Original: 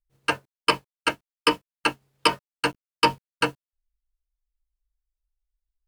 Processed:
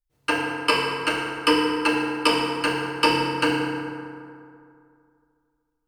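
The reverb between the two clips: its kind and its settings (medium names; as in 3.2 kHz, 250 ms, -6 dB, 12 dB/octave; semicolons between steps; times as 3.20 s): FDN reverb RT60 2.4 s, low-frequency decay 1×, high-frequency decay 0.5×, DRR -3.5 dB; trim -2.5 dB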